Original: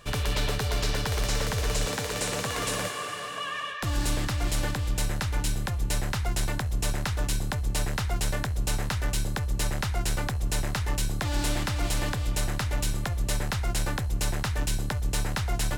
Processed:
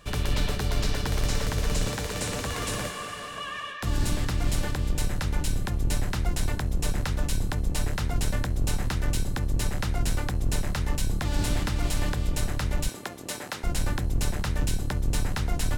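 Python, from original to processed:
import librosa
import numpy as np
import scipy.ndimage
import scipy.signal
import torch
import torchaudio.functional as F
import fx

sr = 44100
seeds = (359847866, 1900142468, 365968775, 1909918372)

y = fx.octave_divider(x, sr, octaves=1, level_db=3.0)
y = fx.highpass(y, sr, hz=320.0, slope=12, at=(12.88, 13.64))
y = y * 10.0 ** (-2.0 / 20.0)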